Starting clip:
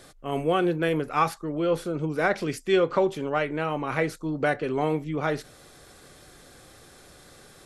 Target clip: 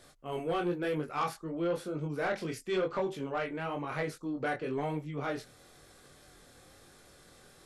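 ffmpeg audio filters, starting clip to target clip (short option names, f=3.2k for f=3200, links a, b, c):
-af "flanger=delay=20:depth=4.5:speed=1,aeval=exprs='0.237*(cos(1*acos(clip(val(0)/0.237,-1,1)))-cos(1*PI/2))+0.0299*(cos(5*acos(clip(val(0)/0.237,-1,1)))-cos(5*PI/2))':c=same,volume=-8dB"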